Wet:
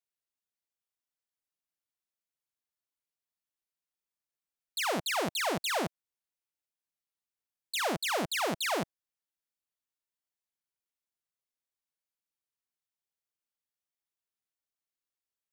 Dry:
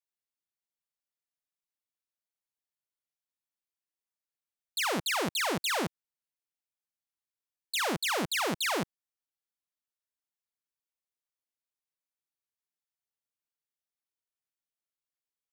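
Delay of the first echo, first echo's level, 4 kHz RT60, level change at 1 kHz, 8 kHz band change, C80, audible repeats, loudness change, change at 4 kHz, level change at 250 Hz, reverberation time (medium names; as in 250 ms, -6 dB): no echo, no echo, no reverb, 0.0 dB, -2.0 dB, no reverb, no echo, -1.5 dB, -2.0 dB, -2.0 dB, no reverb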